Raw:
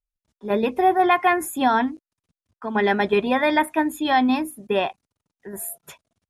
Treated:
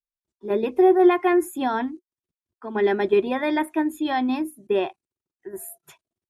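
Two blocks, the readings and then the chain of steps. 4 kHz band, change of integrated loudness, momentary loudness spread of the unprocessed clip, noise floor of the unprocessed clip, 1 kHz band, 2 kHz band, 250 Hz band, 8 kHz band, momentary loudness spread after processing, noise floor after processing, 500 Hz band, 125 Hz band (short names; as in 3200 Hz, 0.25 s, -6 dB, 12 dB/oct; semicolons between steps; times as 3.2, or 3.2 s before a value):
-6.5 dB, -1.0 dB, 14 LU, under -85 dBFS, -6.0 dB, -6.5 dB, +0.5 dB, -6.5 dB, 20 LU, under -85 dBFS, +2.0 dB, n/a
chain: bell 360 Hz +14.5 dB 0.42 oct; spectral noise reduction 10 dB; gain -6.5 dB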